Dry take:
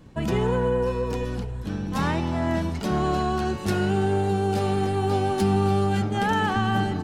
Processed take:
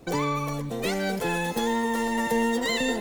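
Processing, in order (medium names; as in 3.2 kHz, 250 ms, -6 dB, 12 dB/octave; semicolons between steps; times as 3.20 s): speed mistake 33 rpm record played at 78 rpm; peaking EQ 1.3 kHz -5.5 dB 2.6 oct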